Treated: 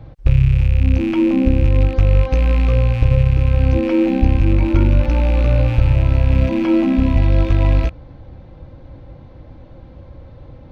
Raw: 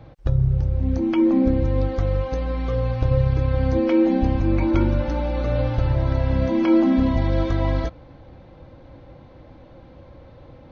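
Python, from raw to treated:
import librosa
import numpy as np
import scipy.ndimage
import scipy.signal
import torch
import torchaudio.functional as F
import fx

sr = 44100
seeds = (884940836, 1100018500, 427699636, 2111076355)

y = fx.rattle_buzz(x, sr, strikes_db=-28.0, level_db=-22.0)
y = fx.low_shelf(y, sr, hz=160.0, db=10.0)
y = fx.rider(y, sr, range_db=10, speed_s=0.5)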